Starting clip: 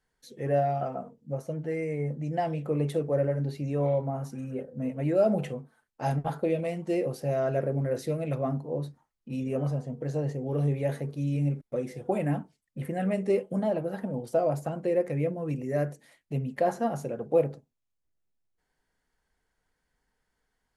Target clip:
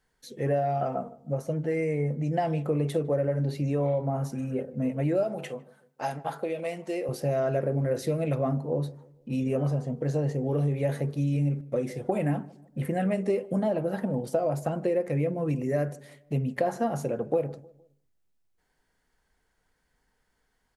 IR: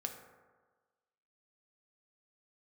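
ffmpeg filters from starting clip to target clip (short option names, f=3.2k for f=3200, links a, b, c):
-filter_complex "[0:a]acompressor=threshold=-27dB:ratio=6,asettb=1/sr,asplit=3[a][b][c];[a]atrim=end=5.234[d];[b]atrim=start=5.23:end=7.09,asetpts=PTS-STARTPTS,afade=t=in:d=0.004:c=qsin,afade=t=out:st=1.856:d=0.004:c=qsin,highpass=f=600:p=1[e];[c]atrim=start=7.086[f];[d][e]acrossfade=d=0.004:c1=hsin:c2=qsin[g];[g][f]acrossfade=d=0.004:c1=qsin:c2=hsin,asplit=2[h][i];[i]adelay=154,lowpass=f=1.1k:p=1,volume=-20dB,asplit=2[j][k];[k]adelay=154,lowpass=f=1.1k:p=1,volume=0.46,asplit=2[l][m];[m]adelay=154,lowpass=f=1.1k:p=1,volume=0.46[n];[h][j][l][n]amix=inputs=4:normalize=0,volume=4.5dB"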